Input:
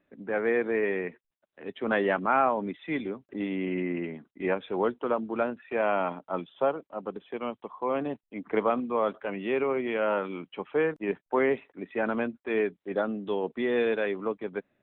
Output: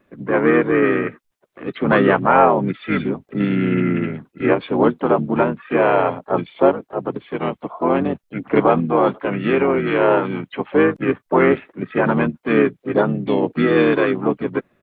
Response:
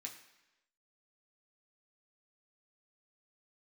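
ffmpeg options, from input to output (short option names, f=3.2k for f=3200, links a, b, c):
-filter_complex "[0:a]apsyclip=14.5dB,asplit=4[a][b][c][d];[b]asetrate=29433,aresample=44100,atempo=1.49831,volume=-2dB[e];[c]asetrate=37084,aresample=44100,atempo=1.18921,volume=-10dB[f];[d]asetrate=55563,aresample=44100,atempo=0.793701,volume=-17dB[g];[a][e][f][g]amix=inputs=4:normalize=0,volume=-5.5dB"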